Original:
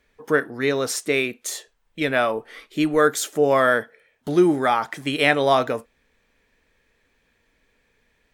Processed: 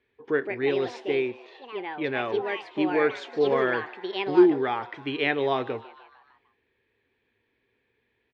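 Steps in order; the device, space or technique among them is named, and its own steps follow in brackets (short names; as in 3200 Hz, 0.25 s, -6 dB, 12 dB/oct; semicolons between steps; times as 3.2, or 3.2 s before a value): echoes that change speed 0.244 s, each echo +5 st, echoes 2, each echo -6 dB; 1.05–2.04 air absorption 300 m; frequency-shifting delay pedal into a guitar cabinet (frequency-shifting echo 0.151 s, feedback 63%, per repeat +120 Hz, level -20 dB; speaker cabinet 88–3700 Hz, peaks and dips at 110 Hz +8 dB, 170 Hz -9 dB, 380 Hz +9 dB, 610 Hz -7 dB, 1300 Hz -6 dB); gain -6.5 dB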